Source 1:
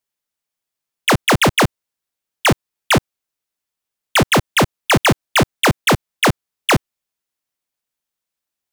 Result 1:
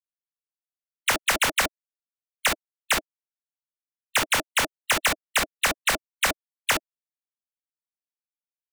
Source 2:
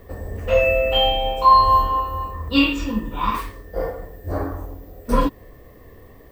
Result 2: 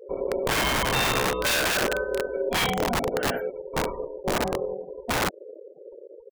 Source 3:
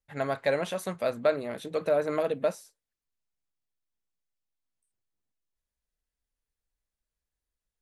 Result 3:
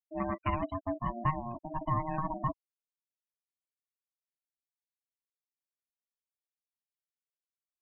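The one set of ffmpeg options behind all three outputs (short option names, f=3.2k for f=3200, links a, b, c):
-filter_complex "[0:a]equalizer=f=160:t=o:w=0.67:g=4,equalizer=f=400:t=o:w=0.67:g=-3,equalizer=f=1k:t=o:w=0.67:g=-5,equalizer=f=4k:t=o:w=0.67:g=-10,afftfilt=real='re*gte(hypot(re,im),0.0316)':imag='im*gte(hypot(re,im),0.0316)':win_size=1024:overlap=0.75,bass=f=250:g=7,treble=f=4k:g=2,acrossover=split=1500[a][b];[a]aeval=exprs='(mod(5.62*val(0)+1,2)-1)/5.62':c=same[c];[c][b]amix=inputs=2:normalize=0,aeval=exprs='val(0)*sin(2*PI*470*n/s)':c=same,volume=-1.5dB"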